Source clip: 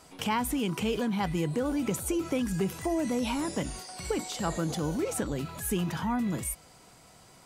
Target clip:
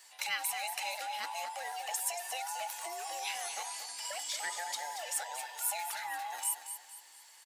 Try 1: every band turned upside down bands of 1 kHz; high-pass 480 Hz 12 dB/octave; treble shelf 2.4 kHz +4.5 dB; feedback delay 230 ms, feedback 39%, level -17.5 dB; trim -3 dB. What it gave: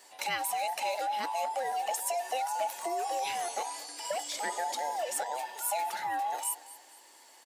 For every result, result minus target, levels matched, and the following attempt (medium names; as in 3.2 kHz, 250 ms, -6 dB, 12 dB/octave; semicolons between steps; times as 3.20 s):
500 Hz band +8.0 dB; echo-to-direct -8 dB
every band turned upside down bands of 1 kHz; high-pass 1.3 kHz 12 dB/octave; treble shelf 2.4 kHz +4.5 dB; feedback delay 230 ms, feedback 39%, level -17.5 dB; trim -3 dB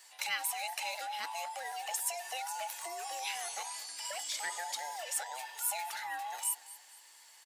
echo-to-direct -8 dB
every band turned upside down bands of 1 kHz; high-pass 1.3 kHz 12 dB/octave; treble shelf 2.4 kHz +4.5 dB; feedback delay 230 ms, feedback 39%, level -9.5 dB; trim -3 dB